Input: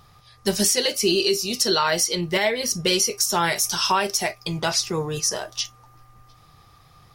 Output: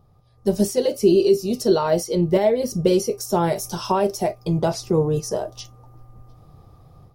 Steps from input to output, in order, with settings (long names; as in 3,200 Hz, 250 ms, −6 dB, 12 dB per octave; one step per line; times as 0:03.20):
drawn EQ curve 590 Hz 0 dB, 1,800 Hz −20 dB, 6,400 Hz −18 dB, 14,000 Hz −13 dB
automatic gain control gain up to 9 dB
level −1.5 dB